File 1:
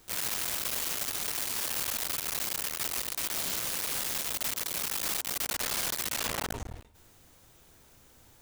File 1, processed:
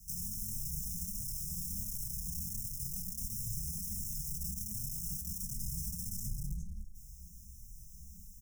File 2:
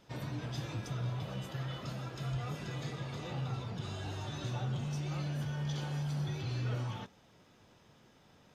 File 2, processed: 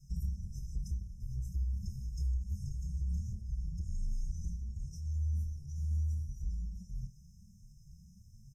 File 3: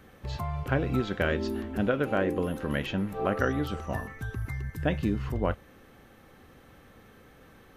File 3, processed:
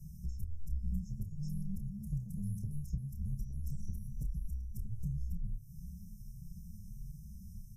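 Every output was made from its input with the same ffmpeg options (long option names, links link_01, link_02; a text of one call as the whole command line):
ffmpeg -i in.wav -filter_complex "[0:a]acrossover=split=1000|6800[link_01][link_02][link_03];[link_01]acompressor=threshold=-33dB:ratio=4[link_04];[link_02]acompressor=threshold=-50dB:ratio=4[link_05];[link_03]acompressor=threshold=-42dB:ratio=4[link_06];[link_04][link_05][link_06]amix=inputs=3:normalize=0,afftfilt=real='re*(1-between(b*sr/4096,290,5200))':imag='im*(1-between(b*sr/4096,290,5200))':win_size=4096:overlap=0.75,lowshelf=frequency=270:gain=8.5,acompressor=threshold=-37dB:ratio=10,afreqshift=-69,asplit=2[link_07][link_08];[link_08]adelay=29,volume=-8.5dB[link_09];[link_07][link_09]amix=inputs=2:normalize=0,bandreject=frequency=102.4:width_type=h:width=4,bandreject=frequency=204.8:width_type=h:width=4,bandreject=frequency=307.2:width_type=h:width=4,bandreject=frequency=409.6:width_type=h:width=4,bandreject=frequency=512:width_type=h:width=4,bandreject=frequency=614.4:width_type=h:width=4,bandreject=frequency=716.8:width_type=h:width=4,bandreject=frequency=819.2:width_type=h:width=4,bandreject=frequency=921.6:width_type=h:width=4,bandreject=frequency=1024:width_type=h:width=4,bandreject=frequency=1126.4:width_type=h:width=4,bandreject=frequency=1228.8:width_type=h:width=4,bandreject=frequency=1331.2:width_type=h:width=4,bandreject=frequency=1433.6:width_type=h:width=4,bandreject=frequency=1536:width_type=h:width=4,bandreject=frequency=1638.4:width_type=h:width=4,bandreject=frequency=1740.8:width_type=h:width=4,asplit=2[link_10][link_11];[link_11]adelay=4.8,afreqshift=1.4[link_12];[link_10][link_12]amix=inputs=2:normalize=1,volume=6.5dB" out.wav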